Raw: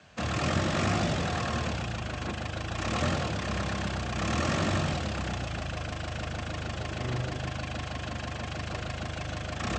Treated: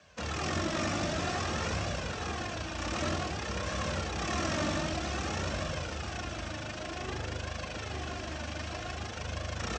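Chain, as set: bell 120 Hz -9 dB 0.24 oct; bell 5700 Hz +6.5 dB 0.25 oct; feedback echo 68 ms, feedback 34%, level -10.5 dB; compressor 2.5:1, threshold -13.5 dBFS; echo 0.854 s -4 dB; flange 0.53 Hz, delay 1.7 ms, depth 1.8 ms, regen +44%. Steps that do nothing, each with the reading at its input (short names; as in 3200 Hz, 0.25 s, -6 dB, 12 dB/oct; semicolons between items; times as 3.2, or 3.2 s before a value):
compressor, threshold -13.5 dBFS: input peak -15.0 dBFS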